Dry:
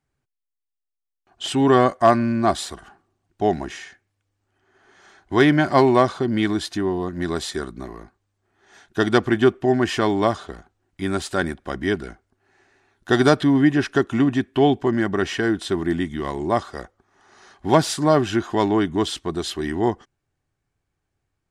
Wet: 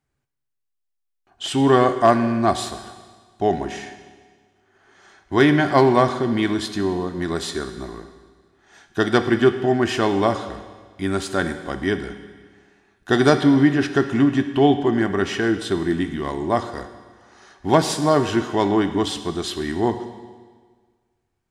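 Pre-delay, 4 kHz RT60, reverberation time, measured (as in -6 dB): 11 ms, 1.5 s, 1.6 s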